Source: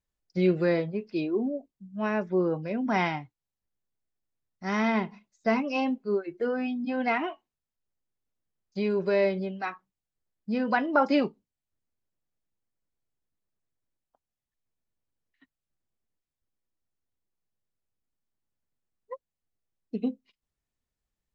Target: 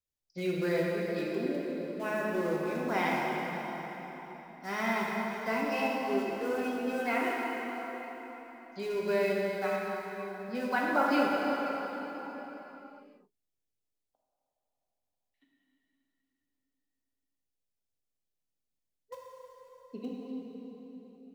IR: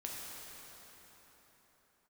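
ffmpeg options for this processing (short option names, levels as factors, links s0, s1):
-filter_complex "[0:a]lowshelf=f=420:g=-7,acrossover=split=240|890|2000[s0][s1][s2][s3];[s2]acrusher=bits=7:mix=0:aa=0.000001[s4];[s0][s1][s4][s3]amix=inputs=4:normalize=0[s5];[1:a]atrim=start_sample=2205[s6];[s5][s6]afir=irnorm=-1:irlink=0"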